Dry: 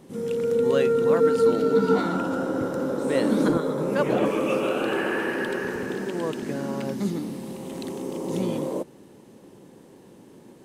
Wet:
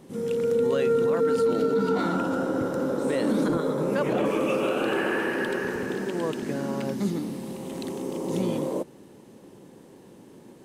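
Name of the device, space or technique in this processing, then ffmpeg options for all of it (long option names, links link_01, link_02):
clipper into limiter: -af "asoftclip=type=hard:threshold=-10.5dB,alimiter=limit=-16dB:level=0:latency=1:release=30"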